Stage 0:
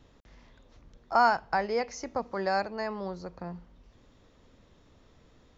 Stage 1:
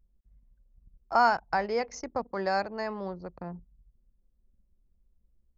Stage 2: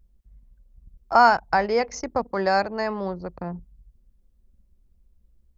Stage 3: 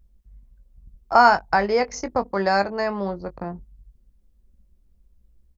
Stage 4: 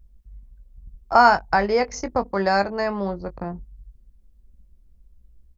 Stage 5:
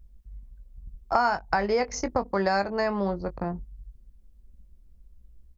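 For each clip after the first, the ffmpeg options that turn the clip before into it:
ffmpeg -i in.wav -af "anlmdn=0.1" out.wav
ffmpeg -i in.wav -af "equalizer=frequency=62:width=1.5:gain=3.5,volume=7dB" out.wav
ffmpeg -i in.wav -filter_complex "[0:a]asplit=2[link_01][link_02];[link_02]adelay=20,volume=-10.5dB[link_03];[link_01][link_03]amix=inputs=2:normalize=0,volume=1.5dB" out.wav
ffmpeg -i in.wav -af "lowshelf=frequency=100:gain=6" out.wav
ffmpeg -i in.wav -af "acompressor=threshold=-21dB:ratio=4" out.wav

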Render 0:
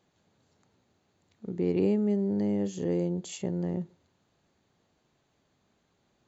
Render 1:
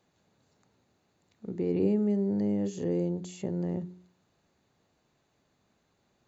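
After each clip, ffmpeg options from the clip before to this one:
ffmpeg -i in.wav -filter_complex "[0:a]bandreject=frequency=3200:width=16,bandreject=frequency=45.07:width_type=h:width=4,bandreject=frequency=90.14:width_type=h:width=4,bandreject=frequency=135.21:width_type=h:width=4,bandreject=frequency=180.28:width_type=h:width=4,bandreject=frequency=225.35:width_type=h:width=4,bandreject=frequency=270.42:width_type=h:width=4,bandreject=frequency=315.49:width_type=h:width=4,bandreject=frequency=360.56:width_type=h:width=4,bandreject=frequency=405.63:width_type=h:width=4,acrossover=split=600[link_01][link_02];[link_02]alimiter=level_in=15.5dB:limit=-24dB:level=0:latency=1:release=11,volume=-15.5dB[link_03];[link_01][link_03]amix=inputs=2:normalize=0" out.wav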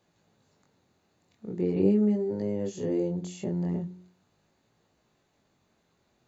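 ffmpeg -i in.wav -af "flanger=delay=17.5:depth=6.4:speed=0.41,volume=4.5dB" out.wav

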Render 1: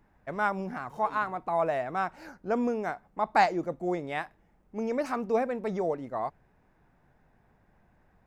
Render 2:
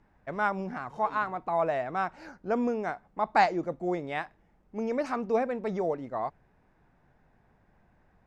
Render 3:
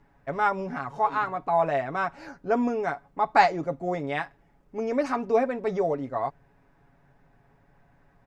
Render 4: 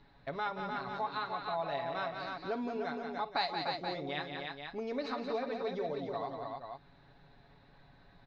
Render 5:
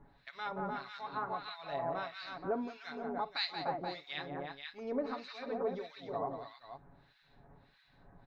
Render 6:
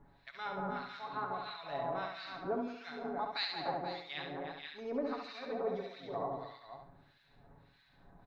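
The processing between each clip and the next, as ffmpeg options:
ffmpeg -i in.wav -af "lowpass=6900" out.wav
ffmpeg -i in.wav -af "aecho=1:1:7.2:0.61,volume=2.5dB" out.wav
ffmpeg -i in.wav -filter_complex "[0:a]lowpass=frequency=4000:width_type=q:width=13,asplit=2[link_01][link_02];[link_02]aecho=0:1:48|176|298|478:0.158|0.376|0.447|0.237[link_03];[link_01][link_03]amix=inputs=2:normalize=0,acompressor=threshold=-41dB:ratio=2,volume=-1.5dB" out.wav
ffmpeg -i in.wav -filter_complex "[0:a]acrossover=split=1500[link_01][link_02];[link_01]aeval=exprs='val(0)*(1-1/2+1/2*cos(2*PI*1.6*n/s))':channel_layout=same[link_03];[link_02]aeval=exprs='val(0)*(1-1/2-1/2*cos(2*PI*1.6*n/s))':channel_layout=same[link_04];[link_03][link_04]amix=inputs=2:normalize=0,volume=2.5dB" out.wav
ffmpeg -i in.wav -af "aecho=1:1:69|138|207|276:0.562|0.186|0.0612|0.0202,volume=-1.5dB" out.wav

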